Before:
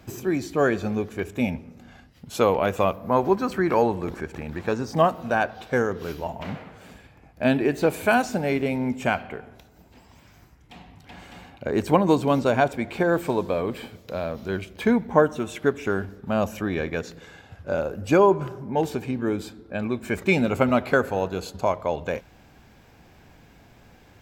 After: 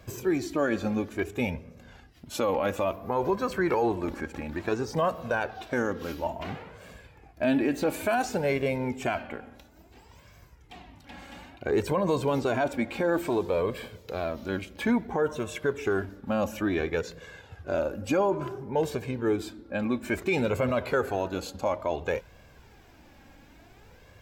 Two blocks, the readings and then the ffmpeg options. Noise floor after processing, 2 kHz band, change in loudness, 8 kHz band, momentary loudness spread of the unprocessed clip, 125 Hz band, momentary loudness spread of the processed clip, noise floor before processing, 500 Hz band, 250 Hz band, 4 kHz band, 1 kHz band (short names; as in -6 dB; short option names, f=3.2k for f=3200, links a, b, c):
-55 dBFS, -4.5 dB, -4.5 dB, -1.5 dB, 12 LU, -5.0 dB, 11 LU, -53 dBFS, -4.5 dB, -4.5 dB, -3.0 dB, -6.0 dB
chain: -af "flanger=delay=1.8:depth=1.9:regen=25:speed=0.58:shape=sinusoidal,alimiter=limit=-19.5dB:level=0:latency=1:release=21,volume=2.5dB"